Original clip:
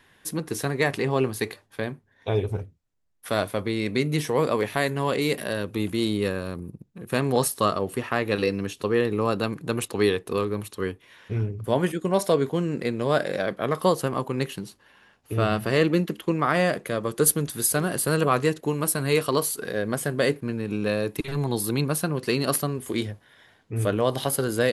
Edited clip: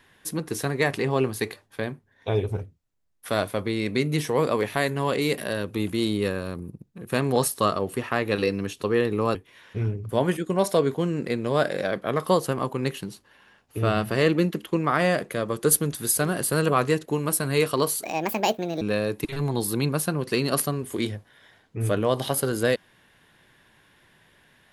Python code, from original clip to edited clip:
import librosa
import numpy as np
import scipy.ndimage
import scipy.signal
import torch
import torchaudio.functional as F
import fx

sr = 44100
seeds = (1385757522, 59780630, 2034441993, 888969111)

y = fx.edit(x, sr, fx.cut(start_s=9.35, length_s=1.55),
    fx.speed_span(start_s=19.58, length_s=1.19, speed=1.52), tone=tone)